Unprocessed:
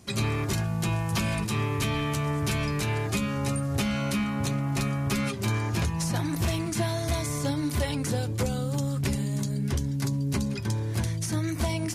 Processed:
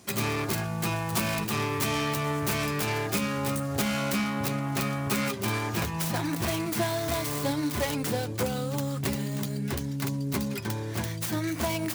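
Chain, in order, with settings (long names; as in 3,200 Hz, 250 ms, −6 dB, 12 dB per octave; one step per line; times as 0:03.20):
stylus tracing distortion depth 0.39 ms
high-pass filter 280 Hz 6 dB per octave
level +3 dB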